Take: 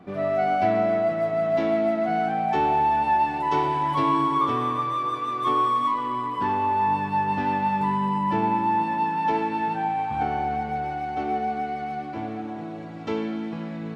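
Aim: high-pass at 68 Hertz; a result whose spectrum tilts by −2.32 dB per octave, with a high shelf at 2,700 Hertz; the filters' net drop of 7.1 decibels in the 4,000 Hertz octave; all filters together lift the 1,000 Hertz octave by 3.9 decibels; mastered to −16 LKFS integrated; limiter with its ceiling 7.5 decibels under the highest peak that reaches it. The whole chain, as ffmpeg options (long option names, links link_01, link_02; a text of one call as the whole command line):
ffmpeg -i in.wav -af "highpass=68,equalizer=frequency=1000:width_type=o:gain=5.5,highshelf=frequency=2700:gain=-5.5,equalizer=frequency=4000:width_type=o:gain=-5.5,volume=8dB,alimiter=limit=-8.5dB:level=0:latency=1" out.wav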